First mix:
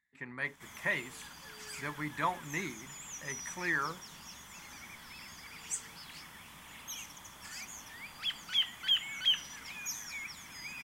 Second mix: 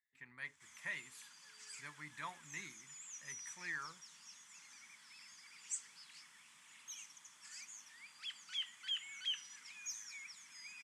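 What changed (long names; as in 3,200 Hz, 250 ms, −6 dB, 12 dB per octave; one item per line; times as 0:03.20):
background: add loudspeaker in its box 230–9,400 Hz, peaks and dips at 720 Hz −5 dB, 3,300 Hz −4 dB, 7,700 Hz +3 dB
master: add guitar amp tone stack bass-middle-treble 5-5-5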